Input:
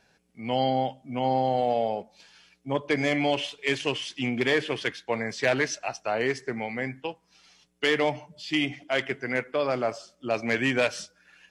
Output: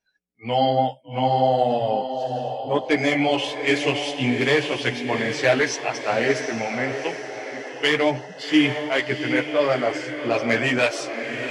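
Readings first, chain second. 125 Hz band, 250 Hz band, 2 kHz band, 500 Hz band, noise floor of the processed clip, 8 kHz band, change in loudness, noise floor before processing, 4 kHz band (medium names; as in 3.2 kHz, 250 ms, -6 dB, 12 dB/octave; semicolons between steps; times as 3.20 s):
+6.0 dB, +6.5 dB, +5.5 dB, +5.5 dB, -42 dBFS, +5.0 dB, +5.0 dB, -67 dBFS, +5.5 dB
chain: chorus voices 6, 0.99 Hz, delay 13 ms, depth 4 ms; echo that smears into a reverb 750 ms, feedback 46%, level -7 dB; spectral noise reduction 25 dB; trim +7.5 dB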